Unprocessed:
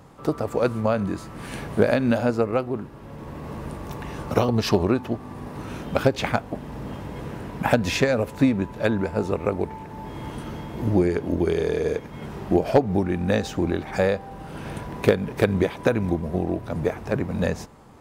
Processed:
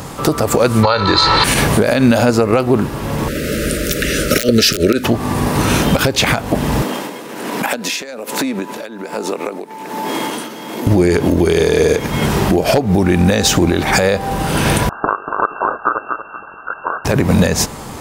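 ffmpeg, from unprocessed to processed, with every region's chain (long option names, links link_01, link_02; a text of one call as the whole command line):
ffmpeg -i in.wav -filter_complex "[0:a]asettb=1/sr,asplit=3[link_01][link_02][link_03];[link_01]atrim=end=0.834[link_04];[link_02]atrim=start=0.83:end=1.44,asetpts=PTS-STARTPTS,afade=type=in:duration=0.004:curve=qsin,afade=type=out:start_time=0.606:duration=0.004:curve=qsin,lowpass=frequency=4100:width_type=q:width=14,equalizer=frequency=1100:width=0.81:gain=12.5,aecho=1:1:2.2:0.64,atrim=end_sample=26901[link_05];[link_03]atrim=start=1.436[link_06];[link_04][link_05]acrossfade=duration=0.004:curve1=hsin:curve2=qsin[link_07];[link_07][link_06]acrossfade=duration=0.004:curve1=qsin:curve2=hsin,asettb=1/sr,asplit=3[link_08][link_09][link_10];[link_08]atrim=end=3.284[link_11];[link_09]atrim=start=3.28:end=5.04,asetpts=PTS-STARTPTS,afade=type=in:duration=0.004:curve=qsin,afade=type=out:start_time=1.756:duration=0.004:curve=qsin,equalizer=frequency=110:width_type=o:width=1.5:gain=-11,aeval=exprs='(mod(3.76*val(0)+1,2)-1)/3.76':channel_layout=same,asuperstop=centerf=890:order=20:qfactor=1.4[link_12];[link_10]atrim=start=5.036[link_13];[link_11][link_12]acrossfade=duration=0.004:curve1=hsin:curve2=qsin[link_14];[link_14][link_13]acrossfade=duration=0.004:curve1=qsin:curve2=hsin,asettb=1/sr,asplit=3[link_15][link_16][link_17];[link_15]atrim=end=6.824[link_18];[link_16]atrim=start=6.82:end=10.87,asetpts=PTS-STARTPTS,afade=type=in:duration=0.004:curve=qsin,afade=type=out:start_time=4.046:duration=0.004:curve=qsin,highpass=frequency=230:width=0.5412,highpass=frequency=230:width=1.3066,acompressor=threshold=-35dB:ratio=12:attack=3.2:release=140:knee=1:detection=peak,tremolo=f=1.2:d=0.71[link_19];[link_17]atrim=start=10.866[link_20];[link_18][link_19]acrossfade=duration=0.004:curve1=hsin:curve2=qsin[link_21];[link_21][link_20]acrossfade=duration=0.004:curve1=qsin:curve2=hsin,asettb=1/sr,asplit=3[link_22][link_23][link_24];[link_22]atrim=end=14.894[link_25];[link_23]atrim=start=14.89:end=17.05,asetpts=PTS-STARTPTS,afade=type=in:duration=0.004:curve=qsin,afade=type=out:start_time=2.156:duration=0.004:curve=qsin,lowpass=frequency=2400:width_type=q:width=0.5098,lowpass=frequency=2400:width_type=q:width=0.6013,lowpass=frequency=2400:width_type=q:width=0.9,lowpass=frequency=2400:width_type=q:width=2.563,afreqshift=-2800,asuperstop=centerf=2200:order=20:qfactor=1.5,aecho=1:1:237|474|711:0.316|0.0885|0.0248,atrim=end_sample=95256[link_26];[link_24]atrim=start=17.046[link_27];[link_25][link_26]acrossfade=duration=0.004:curve1=hsin:curve2=qsin[link_28];[link_28][link_27]acrossfade=duration=0.004:curve1=qsin:curve2=hsin,acompressor=threshold=-25dB:ratio=6,highshelf=frequency=3000:gain=11.5,alimiter=level_in=20dB:limit=-1dB:release=50:level=0:latency=1,volume=-1dB" out.wav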